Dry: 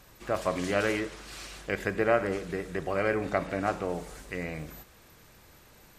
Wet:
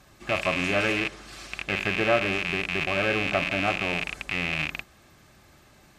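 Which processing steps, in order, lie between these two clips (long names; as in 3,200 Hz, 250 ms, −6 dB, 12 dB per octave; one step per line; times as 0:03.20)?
loose part that buzzes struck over −44 dBFS, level −15 dBFS
high-shelf EQ 12,000 Hz −11.5 dB
notch comb filter 480 Hz
level +2.5 dB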